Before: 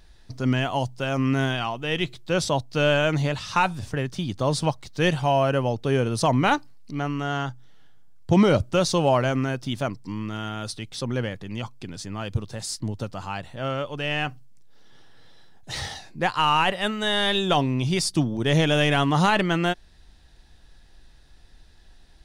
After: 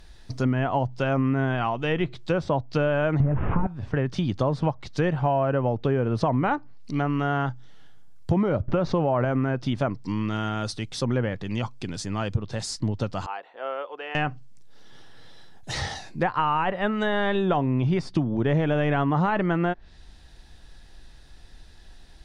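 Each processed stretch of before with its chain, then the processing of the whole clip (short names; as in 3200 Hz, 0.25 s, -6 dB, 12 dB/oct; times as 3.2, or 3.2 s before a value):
3.2–3.67 delta modulation 16 kbps, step -30.5 dBFS + tilt -4 dB/oct + fast leveller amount 50%
8.68–9.25 short-mantissa float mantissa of 4-bit + air absorption 100 m + fast leveller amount 70%
13.26–14.15 HPF 460 Hz 24 dB/oct + tape spacing loss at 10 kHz 45 dB + notch 600 Hz, Q 6.2
whole clip: treble ducked by the level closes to 1900 Hz, closed at -21.5 dBFS; dynamic EQ 3300 Hz, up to -5 dB, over -43 dBFS, Q 1.2; compressor 10:1, threshold -23 dBFS; gain +4 dB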